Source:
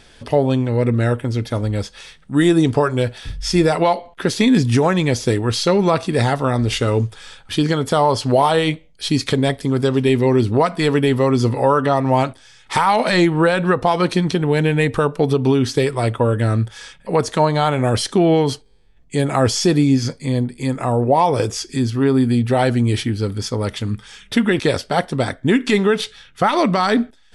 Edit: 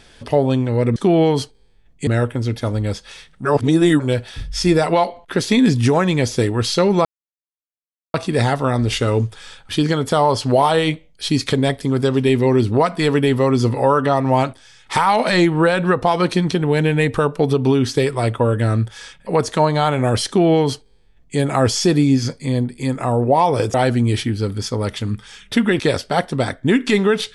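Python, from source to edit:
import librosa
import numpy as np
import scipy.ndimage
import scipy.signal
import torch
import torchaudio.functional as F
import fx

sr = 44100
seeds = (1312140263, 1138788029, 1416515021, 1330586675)

y = fx.edit(x, sr, fx.reverse_span(start_s=2.34, length_s=0.55),
    fx.insert_silence(at_s=5.94, length_s=1.09),
    fx.duplicate(start_s=18.07, length_s=1.11, to_s=0.96),
    fx.cut(start_s=21.54, length_s=1.0), tone=tone)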